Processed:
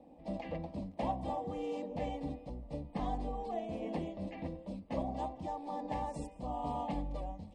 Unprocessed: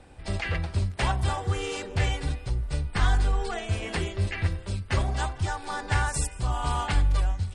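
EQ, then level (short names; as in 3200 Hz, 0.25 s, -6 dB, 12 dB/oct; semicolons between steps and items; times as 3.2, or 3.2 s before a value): band-pass 360 Hz, Q 1.5; fixed phaser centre 390 Hz, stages 6; +5.0 dB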